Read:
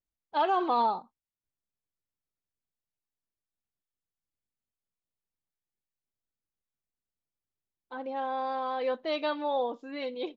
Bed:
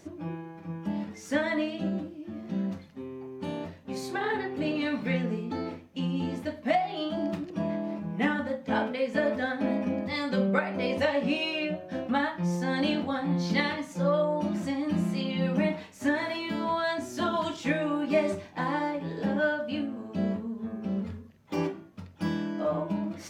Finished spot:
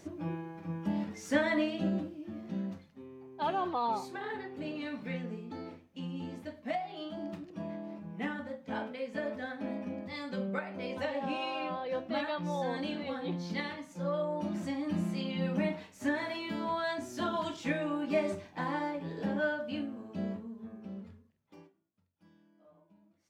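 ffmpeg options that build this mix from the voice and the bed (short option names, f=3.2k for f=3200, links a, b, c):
-filter_complex "[0:a]adelay=3050,volume=-6dB[a];[1:a]volume=3.5dB,afade=t=out:st=1.94:d=0.99:silence=0.375837,afade=t=in:st=13.93:d=0.67:silence=0.595662,afade=t=out:st=19.77:d=1.93:silence=0.0375837[b];[a][b]amix=inputs=2:normalize=0"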